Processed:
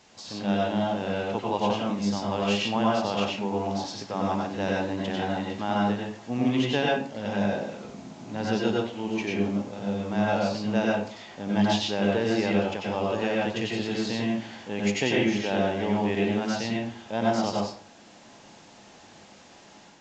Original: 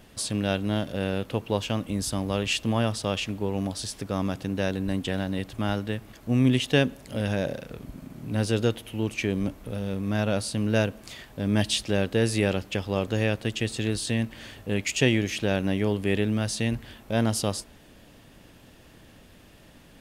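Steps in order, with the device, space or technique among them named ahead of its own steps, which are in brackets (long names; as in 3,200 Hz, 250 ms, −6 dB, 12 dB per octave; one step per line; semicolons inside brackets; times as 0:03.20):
filmed off a television (band-pass filter 170–7,100 Hz; parametric band 850 Hz +11 dB 0.48 octaves; convolution reverb RT60 0.50 s, pre-delay 87 ms, DRR −3.5 dB; white noise bed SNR 25 dB; automatic gain control gain up to 4.5 dB; level −8.5 dB; AAC 48 kbit/s 16,000 Hz)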